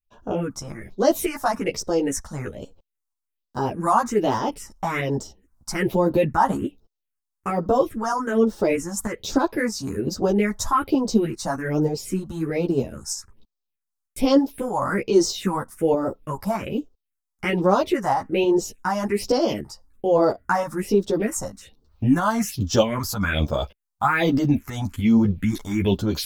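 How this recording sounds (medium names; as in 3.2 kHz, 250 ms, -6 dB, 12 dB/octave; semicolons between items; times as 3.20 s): phasing stages 4, 1.2 Hz, lowest notch 390–2300 Hz; tremolo saw up 3.2 Hz, depth 40%; a shimmering, thickened sound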